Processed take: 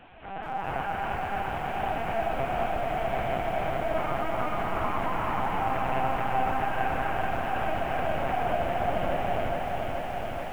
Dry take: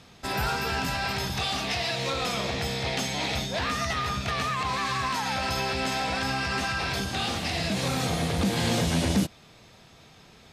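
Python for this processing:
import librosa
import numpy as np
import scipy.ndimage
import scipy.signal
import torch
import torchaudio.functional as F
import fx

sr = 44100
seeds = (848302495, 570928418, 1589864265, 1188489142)

y = fx.delta_mod(x, sr, bps=16000, step_db=-35.5)
y = fx.ladder_highpass(y, sr, hz=570.0, resonance_pct=65)
y = y + 10.0 ** (-19.0 / 20.0) * np.pad(y, (int(163 * sr / 1000.0), 0))[:len(y)]
y = fx.rev_gated(y, sr, seeds[0], gate_ms=420, shape='rising', drr_db=-6.5)
y = fx.lpc_vocoder(y, sr, seeds[1], excitation='pitch_kept', order=8)
y = fx.echo_crushed(y, sr, ms=428, feedback_pct=80, bits=9, wet_db=-4.5)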